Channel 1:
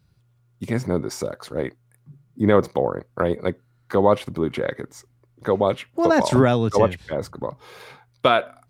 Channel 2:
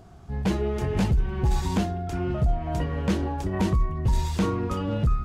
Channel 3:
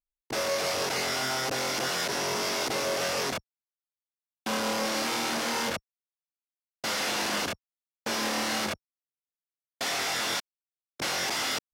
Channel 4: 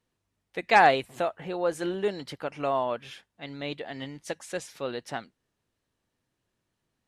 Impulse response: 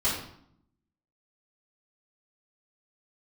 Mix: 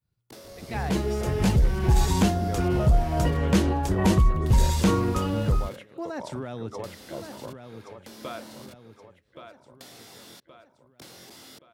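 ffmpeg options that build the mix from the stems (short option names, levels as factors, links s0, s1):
-filter_complex "[0:a]agate=range=0.0224:threshold=0.00158:ratio=3:detection=peak,alimiter=limit=0.237:level=0:latency=1:release=151,volume=0.237,asplit=2[s0][s1];[s1]volume=0.376[s2];[1:a]highshelf=f=6100:g=8.5,dynaudnorm=f=660:g=3:m=1.88,adelay=450,volume=0.794[s3];[2:a]acrossover=split=430[s4][s5];[s5]acompressor=threshold=0.00891:ratio=10[s6];[s4][s6]amix=inputs=2:normalize=0,aexciter=amount=1.8:drive=6:freq=3400,volume=0.335[s7];[3:a]volume=0.15,asplit=2[s8][s9];[s9]volume=0.376[s10];[s2][s10]amix=inputs=2:normalize=0,aecho=0:1:1123|2246|3369|4492|5615|6738:1|0.46|0.212|0.0973|0.0448|0.0206[s11];[s0][s3][s7][s8][s11]amix=inputs=5:normalize=0"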